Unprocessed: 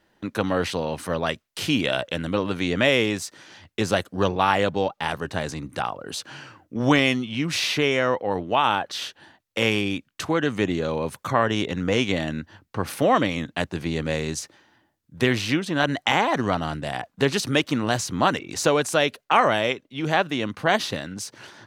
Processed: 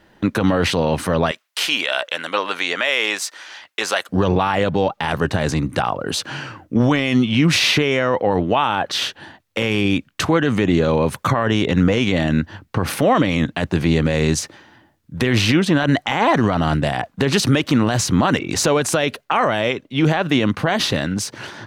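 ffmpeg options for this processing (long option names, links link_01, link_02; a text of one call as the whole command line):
ffmpeg -i in.wav -filter_complex "[0:a]asettb=1/sr,asplit=3[link_01][link_02][link_03];[link_01]atrim=end=1.314[link_04];[link_02]atrim=start=1.31:end=4.09,asetpts=PTS-STARTPTS,afade=type=in:duration=0.004:curve=qsin,afade=type=out:start_time=2.776:duration=0.004:curve=qsin,highpass=840[link_05];[link_03]atrim=start=4.086[link_06];[link_04][link_05]acrossfade=duration=0.004:curve1=hsin:curve2=qsin[link_07];[link_07][link_06]acrossfade=duration=0.004:curve1=qsin:curve2=hsin,bass=frequency=250:gain=3,treble=frequency=4000:gain=-4,alimiter=level_in=16.5dB:limit=-1dB:release=50:level=0:latency=1,volume=-5.5dB" out.wav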